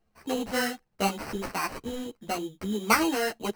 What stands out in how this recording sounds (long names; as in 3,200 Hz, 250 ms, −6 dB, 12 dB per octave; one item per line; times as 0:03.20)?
aliases and images of a low sample rate 3,500 Hz, jitter 0%
a shimmering, thickened sound